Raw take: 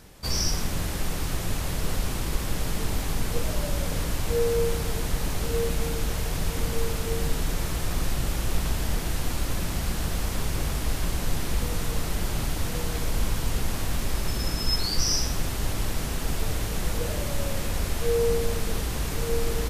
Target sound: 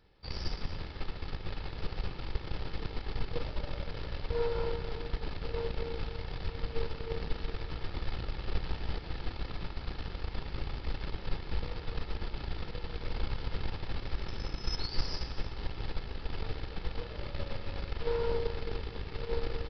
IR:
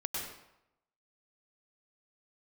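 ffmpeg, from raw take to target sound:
-filter_complex "[0:a]aecho=1:1:2.3:0.34,aeval=exprs='0.376*(cos(1*acos(clip(val(0)/0.376,-1,1)))-cos(1*PI/2))+0.15*(cos(3*acos(clip(val(0)/0.376,-1,1)))-cos(3*PI/2))+0.0422*(cos(5*acos(clip(val(0)/0.376,-1,1)))-cos(5*PI/2))+0.0119*(cos(7*acos(clip(val(0)/0.376,-1,1)))-cos(7*PI/2))+0.00531*(cos(8*acos(clip(val(0)/0.376,-1,1)))-cos(8*PI/2))':channel_layout=same,asoftclip=type=tanh:threshold=-18dB,asplit=2[link_01][link_02];[1:a]atrim=start_sample=2205,adelay=119[link_03];[link_02][link_03]afir=irnorm=-1:irlink=0,volume=-12.5dB[link_04];[link_01][link_04]amix=inputs=2:normalize=0,aresample=11025,aresample=44100,volume=1dB"

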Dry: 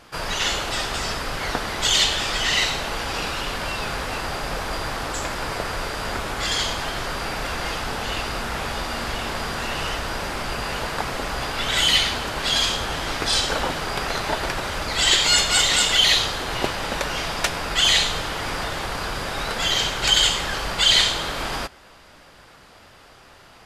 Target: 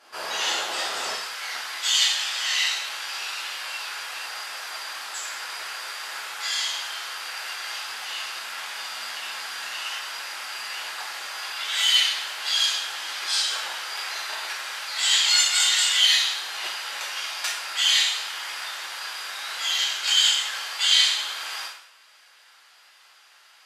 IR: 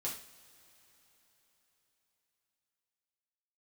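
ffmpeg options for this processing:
-filter_complex "[0:a]asetnsamples=nb_out_samples=441:pad=0,asendcmd='1.14 highpass f 1500',highpass=540[link_01];[1:a]atrim=start_sample=2205,afade=type=out:start_time=0.24:duration=0.01,atrim=end_sample=11025,asetrate=33075,aresample=44100[link_02];[link_01][link_02]afir=irnorm=-1:irlink=0,volume=-4dB"

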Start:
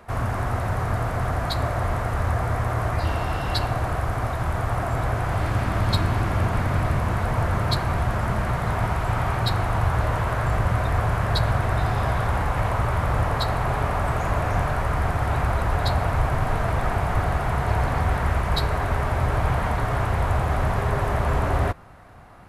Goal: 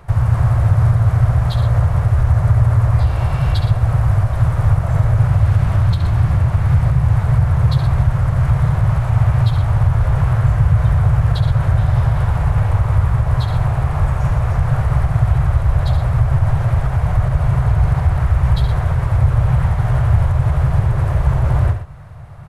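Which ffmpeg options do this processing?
ffmpeg -i in.wav -filter_complex "[0:a]asplit=2[link_01][link_02];[link_02]asetrate=37084,aresample=44100,atempo=1.18921,volume=-2dB[link_03];[link_01][link_03]amix=inputs=2:normalize=0,alimiter=limit=-16.5dB:level=0:latency=1:release=208,lowshelf=frequency=180:width_type=q:width=3:gain=9,aecho=1:1:69.97|119.5:0.355|0.282" out.wav

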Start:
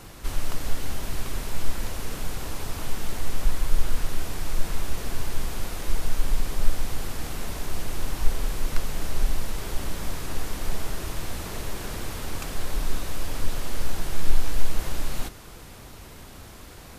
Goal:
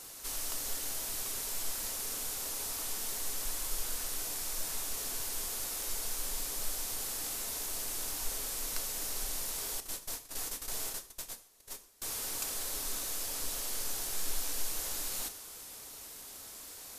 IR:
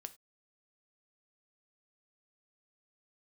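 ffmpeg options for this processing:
-filter_complex "[0:a]asettb=1/sr,asplit=3[link_01][link_02][link_03];[link_01]atrim=end=9.804[link_04];[link_02]atrim=start=9.8:end=12.02,asetpts=PTS-STARTPTS,afade=type=in:duration=0.004:curve=qsin,afade=type=out:start_time=2.216:duration=0.004:curve=qsin,agate=range=-27dB:threshold=-24dB:ratio=16:detection=peak[link_05];[link_03]atrim=start=12.016[link_06];[link_04][link_05]acrossfade=duration=0.004:curve1=hsin:curve2=qsin[link_07];[link_07][link_06]acrossfade=duration=0.004:curve1=qsin:curve2=hsin,bass=frequency=250:gain=-13,treble=frequency=4000:gain=14[link_08];[1:a]atrim=start_sample=2205,asetrate=29106,aresample=44100[link_09];[link_08][link_09]afir=irnorm=-1:irlink=0,volume=-5.5dB"

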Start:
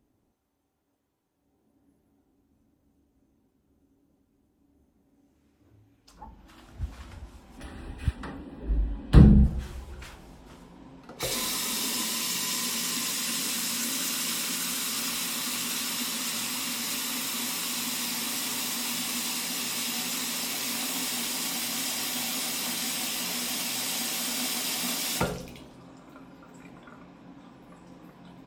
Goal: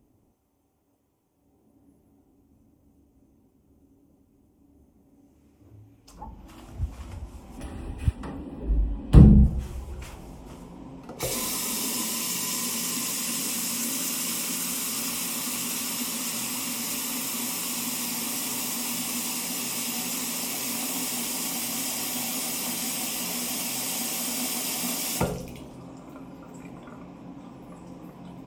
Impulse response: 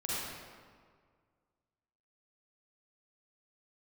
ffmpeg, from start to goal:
-filter_complex "[0:a]equalizer=frequency=100:width_type=o:width=0.67:gain=3,equalizer=frequency=1600:width_type=o:width=0.67:gain=-9,equalizer=frequency=4000:width_type=o:width=0.67:gain=-8,asplit=2[link_01][link_02];[link_02]acompressor=threshold=-45dB:ratio=6,volume=-1.5dB[link_03];[link_01][link_03]amix=inputs=2:normalize=0,volume=1.5dB"

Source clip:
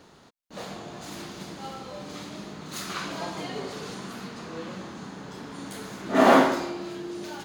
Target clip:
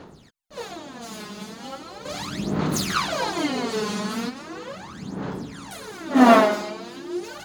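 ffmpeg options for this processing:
ffmpeg -i in.wav -filter_complex "[0:a]asettb=1/sr,asplit=3[link_01][link_02][link_03];[link_01]atrim=end=2.054[link_04];[link_02]atrim=start=2.05:end=4.29,asetpts=PTS-STARTPTS,afade=type=in:duration=0.004:curve=qsin,afade=type=out:start_time=2.236:duration=0.004:curve=qsin,acontrast=66[link_05];[link_03]atrim=start=4.286[link_06];[link_04][link_05]acrossfade=duration=0.004:curve1=hsin:curve2=qsin[link_07];[link_07][link_06]acrossfade=duration=0.004:curve1=qsin:curve2=hsin,aphaser=in_gain=1:out_gain=1:delay=4.8:decay=0.77:speed=0.38:type=sinusoidal,volume=-1.5dB" out.wav

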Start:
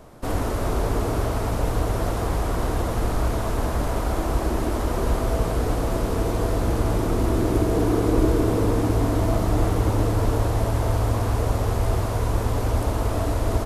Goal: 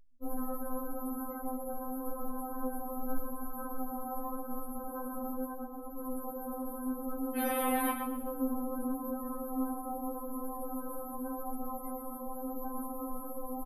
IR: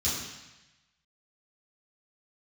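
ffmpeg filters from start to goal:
-filter_complex "[0:a]asplit=2[link_01][link_02];[1:a]atrim=start_sample=2205,asetrate=41013,aresample=44100,lowshelf=frequency=170:gain=9[link_03];[link_02][link_03]afir=irnorm=-1:irlink=0,volume=-26.5dB[link_04];[link_01][link_04]amix=inputs=2:normalize=0,aexciter=amount=13.8:drive=8.7:freq=9900,asplit=3[link_05][link_06][link_07];[link_05]afade=type=out:start_time=7.35:duration=0.02[link_08];[link_06]asplit=2[link_09][link_10];[link_10]highpass=frequency=720:poles=1,volume=22dB,asoftclip=type=tanh:threshold=-2dB[link_11];[link_09][link_11]amix=inputs=2:normalize=0,lowpass=frequency=6400:poles=1,volume=-6dB,afade=type=in:start_time=7.35:duration=0.02,afade=type=out:start_time=7.91:duration=0.02[link_12];[link_07]afade=type=in:start_time=7.91:duration=0.02[link_13];[link_08][link_12][link_13]amix=inputs=3:normalize=0,aemphasis=mode=reproduction:type=50kf,asplit=3[link_14][link_15][link_16];[link_14]afade=type=out:start_time=5.48:duration=0.02[link_17];[link_15]volume=22.5dB,asoftclip=hard,volume=-22.5dB,afade=type=in:start_time=5.48:duration=0.02,afade=type=out:start_time=5.96:duration=0.02[link_18];[link_16]afade=type=in:start_time=5.96:duration=0.02[link_19];[link_17][link_18][link_19]amix=inputs=3:normalize=0,afftfilt=real='re*gte(hypot(re,im),0.0398)':imag='im*gte(hypot(re,im),0.0398)':win_size=1024:overlap=0.75,aecho=1:1:122|244|366|488:0.398|0.139|0.0488|0.0171,flanger=delay=20:depth=4.8:speed=0.86,afftfilt=real='re*3.46*eq(mod(b,12),0)':imag='im*3.46*eq(mod(b,12),0)':win_size=2048:overlap=0.75,volume=-6dB"

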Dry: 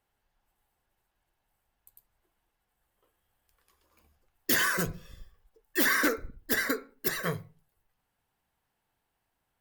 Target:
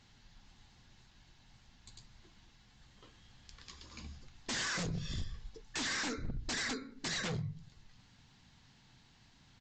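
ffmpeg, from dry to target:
ffmpeg -i in.wav -af "bass=frequency=250:gain=14,treble=frequency=4000:gain=14,bandreject=frequency=50:width_type=h:width=6,bandreject=frequency=100:width_type=h:width=6,bandreject=frequency=150:width_type=h:width=6,acontrast=80,equalizer=frequency=125:width_type=o:width=1:gain=7,equalizer=frequency=250:width_type=o:width=1:gain=9,equalizer=frequency=1000:width_type=o:width=1:gain=5,equalizer=frequency=2000:width_type=o:width=1:gain=8,equalizer=frequency=4000:width_type=o:width=1:gain=12,acompressor=threshold=-25dB:ratio=12,aresample=16000,aeval=exprs='0.0398*(abs(mod(val(0)/0.0398+3,4)-2)-1)':channel_layout=same,aresample=44100,volume=-3.5dB" out.wav

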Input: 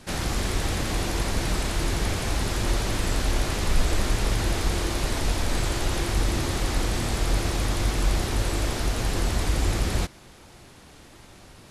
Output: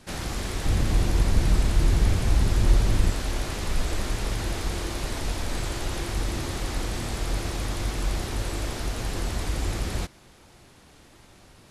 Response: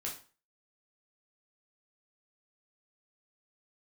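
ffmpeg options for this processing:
-filter_complex "[0:a]asettb=1/sr,asplit=3[link_01][link_02][link_03];[link_01]atrim=end=0.664[link_04];[link_02]atrim=start=0.66:end=3.1,asetpts=PTS-STARTPTS,afade=type=in:duration=0.004:curve=qsin,afade=type=out:start_time=2.436:duration=0.004:curve=qsin,lowshelf=frequency=220:gain=11.5[link_05];[link_03]atrim=start=3.096[link_06];[link_04][link_05]acrossfade=duration=0.004:curve1=hsin:curve2=qsin[link_07];[link_07][link_06]acrossfade=duration=0.004:curve1=qsin:curve2=hsin,volume=-4dB"

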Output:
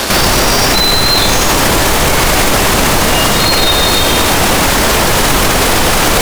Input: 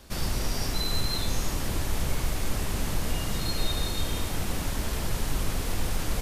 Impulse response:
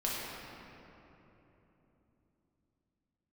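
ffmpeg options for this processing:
-filter_complex "[0:a]highshelf=frequency=4600:gain=10,acrossover=split=1200[link_01][link_02];[link_02]asoftclip=type=tanh:threshold=-32dB[link_03];[link_01][link_03]amix=inputs=2:normalize=0,asplit=2[link_04][link_05];[link_05]highpass=frequency=720:poles=1,volume=26dB,asoftclip=type=tanh:threshold=-13.5dB[link_06];[link_04][link_06]amix=inputs=2:normalize=0,lowpass=frequency=1800:poles=1,volume=-6dB,asplit=2[link_07][link_08];[link_08]acrusher=bits=4:mix=0:aa=0.5,volume=-3.5dB[link_09];[link_07][link_09]amix=inputs=2:normalize=0,alimiter=level_in=24dB:limit=-1dB:release=50:level=0:latency=1,volume=-1dB"

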